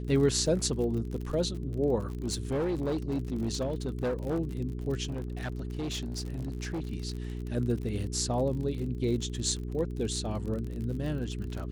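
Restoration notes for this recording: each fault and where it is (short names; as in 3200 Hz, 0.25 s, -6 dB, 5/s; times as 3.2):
crackle 56/s -36 dBFS
hum 60 Hz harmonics 7 -36 dBFS
1.98–4.4 clipped -26 dBFS
5.09–6.88 clipped -30 dBFS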